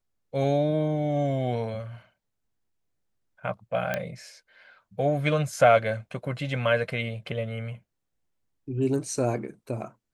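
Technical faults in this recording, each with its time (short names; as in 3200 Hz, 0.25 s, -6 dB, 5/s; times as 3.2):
3.94 pop -13 dBFS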